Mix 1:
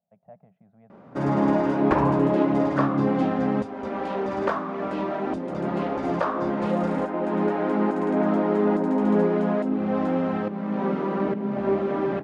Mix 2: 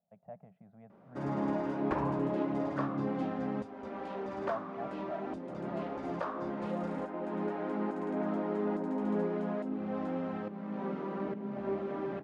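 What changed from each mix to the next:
background -11.5 dB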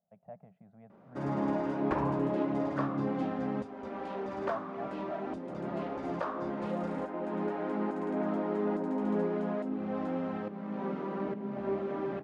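background: send +10.5 dB

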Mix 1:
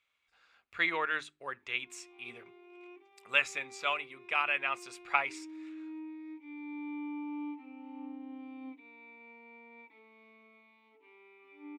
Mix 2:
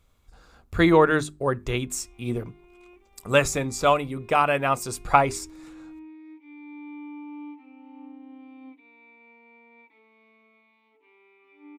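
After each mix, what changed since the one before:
speech: remove band-pass 2400 Hz, Q 2.3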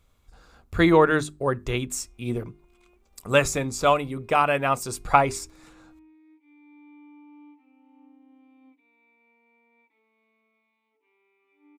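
background -10.5 dB

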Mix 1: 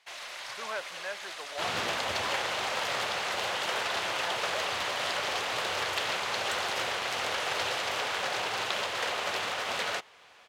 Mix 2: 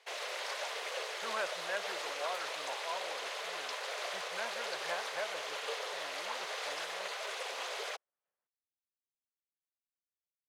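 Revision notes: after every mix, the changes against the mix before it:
speech: entry +0.65 s; first sound: add resonant high-pass 450 Hz, resonance Q 4.9; second sound: muted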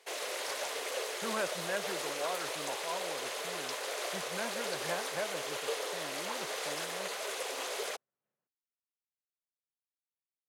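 master: remove three-band isolator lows -17 dB, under 490 Hz, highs -12 dB, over 5800 Hz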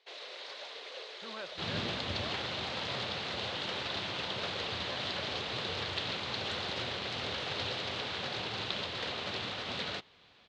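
second sound: unmuted; master: add ladder low-pass 4500 Hz, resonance 55%

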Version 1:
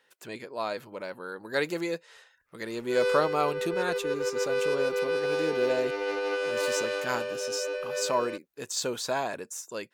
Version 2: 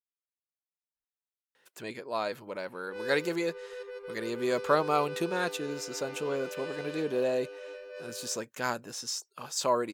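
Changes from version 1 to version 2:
speech: entry +1.55 s; background -11.0 dB

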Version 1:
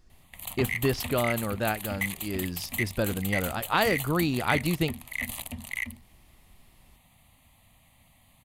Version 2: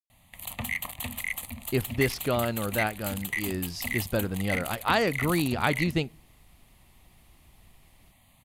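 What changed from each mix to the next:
speech: entry +1.15 s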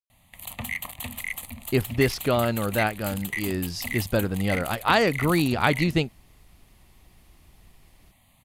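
speech +5.0 dB; reverb: off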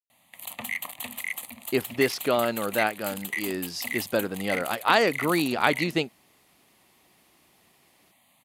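master: add HPF 260 Hz 12 dB/oct

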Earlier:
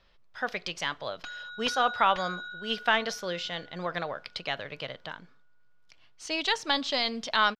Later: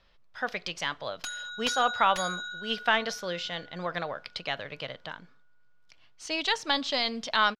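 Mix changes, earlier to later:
background: remove air absorption 230 m; master: add bell 380 Hz -2.5 dB 0.23 oct

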